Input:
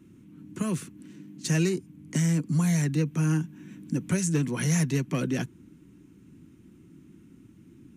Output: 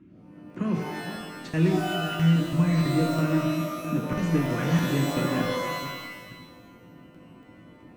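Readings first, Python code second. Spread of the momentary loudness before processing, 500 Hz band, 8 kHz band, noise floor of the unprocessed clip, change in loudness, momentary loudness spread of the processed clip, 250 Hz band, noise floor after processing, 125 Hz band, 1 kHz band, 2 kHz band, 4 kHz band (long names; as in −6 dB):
14 LU, +5.0 dB, −8.5 dB, −54 dBFS, +2.0 dB, 13 LU, +2.5 dB, −51 dBFS, +1.0 dB, +11.5 dB, +4.5 dB, +6.0 dB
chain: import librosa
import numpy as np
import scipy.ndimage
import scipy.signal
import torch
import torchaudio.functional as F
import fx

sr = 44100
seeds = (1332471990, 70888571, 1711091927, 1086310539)

y = fx.reverse_delay(x, sr, ms=452, wet_db=-10.5)
y = scipy.signal.sosfilt(scipy.signal.butter(2, 2300.0, 'lowpass', fs=sr, output='sos'), y)
y = fx.hum_notches(y, sr, base_hz=50, count=3)
y = fx.buffer_crackle(y, sr, first_s=0.5, period_s=0.33, block=2048, kind='zero')
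y = fx.rev_shimmer(y, sr, seeds[0], rt60_s=1.1, semitones=12, shimmer_db=-2, drr_db=3.0)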